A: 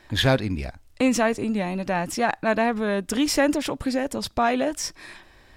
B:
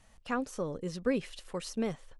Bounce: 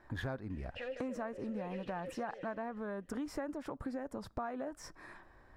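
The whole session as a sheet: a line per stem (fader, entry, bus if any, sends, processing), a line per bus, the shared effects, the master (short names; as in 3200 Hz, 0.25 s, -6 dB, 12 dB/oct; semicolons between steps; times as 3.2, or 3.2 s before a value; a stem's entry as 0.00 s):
-7.5 dB, 0.00 s, no send, no echo send, resonant high shelf 2000 Hz -12 dB, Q 1.5
+0.5 dB, 0.50 s, no send, echo send -13.5 dB, overdrive pedal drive 30 dB, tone 4400 Hz, clips at -17.5 dBFS; vowel filter e; auto duck -9 dB, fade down 1.45 s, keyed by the first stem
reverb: off
echo: feedback echo 0.154 s, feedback 52%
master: compressor 6:1, threshold -37 dBFS, peak gain reduction 14.5 dB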